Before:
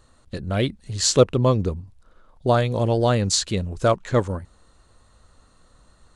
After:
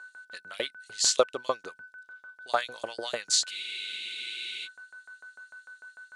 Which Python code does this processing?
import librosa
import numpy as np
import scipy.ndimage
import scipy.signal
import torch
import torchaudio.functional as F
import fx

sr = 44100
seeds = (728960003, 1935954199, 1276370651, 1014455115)

y = x + 10.0 ** (-41.0 / 20.0) * np.sin(2.0 * np.pi * 1500.0 * np.arange(len(x)) / sr)
y = fx.filter_lfo_highpass(y, sr, shape='saw_up', hz=6.7, low_hz=550.0, high_hz=6100.0, q=1.2)
y = fx.spec_freeze(y, sr, seeds[0], at_s=3.52, hold_s=1.13)
y = y * 10.0 ** (-3.5 / 20.0)